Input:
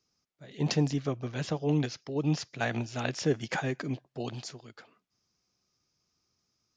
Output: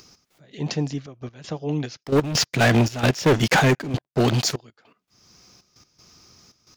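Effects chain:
0:02.03–0:04.56: leveller curve on the samples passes 5
upward compression, threshold −34 dBFS
gate pattern "xx..x..xxxxx" 198 BPM −12 dB
level +1.5 dB

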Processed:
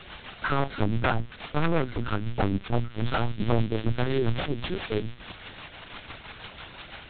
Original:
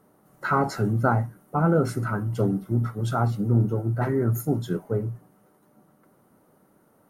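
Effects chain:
spike at every zero crossing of −16 dBFS
0:03.00–0:05.13: high-shelf EQ 2,800 Hz +7 dB
transient designer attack +11 dB, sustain −6 dB
rotating-speaker cabinet horn 6 Hz
wave folding −16.5 dBFS
linear-prediction vocoder at 8 kHz pitch kept

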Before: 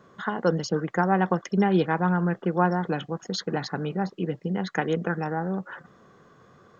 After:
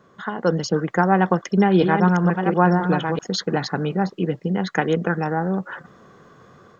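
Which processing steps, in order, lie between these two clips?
0:01.12–0:03.20: delay that plays each chunk backwards 690 ms, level −6 dB
automatic gain control gain up to 6 dB

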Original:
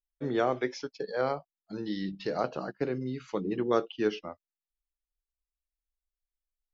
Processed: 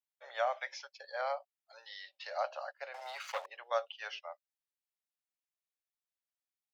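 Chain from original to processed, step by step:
0:02.94–0:03.46: leveller curve on the samples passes 3
Chebyshev high-pass with heavy ripple 550 Hz, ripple 3 dB
level −1.5 dB

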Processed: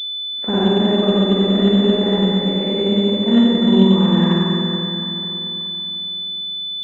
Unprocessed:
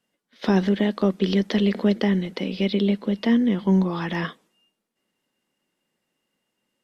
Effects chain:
spring reverb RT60 3.6 s, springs 47/55 ms, chirp 75 ms, DRR −9.5 dB
switching amplifier with a slow clock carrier 3,500 Hz
level −3 dB

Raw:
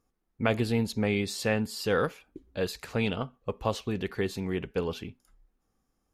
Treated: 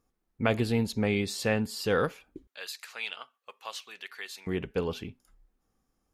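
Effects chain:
0:02.47–0:04.47: high-pass filter 1,500 Hz 12 dB per octave

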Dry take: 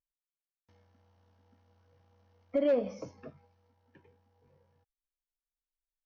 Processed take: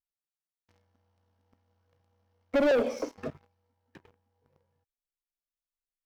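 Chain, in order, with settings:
0:02.71–0:03.18: Chebyshev high-pass filter 230 Hz, order 8
leveller curve on the samples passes 3

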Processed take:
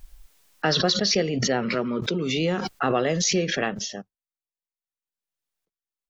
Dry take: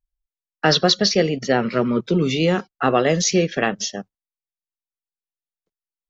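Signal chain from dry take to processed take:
0:01.75–0:02.37: low-shelf EQ 120 Hz −10.5 dB
background raised ahead of every attack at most 22 dB per second
level −6.5 dB

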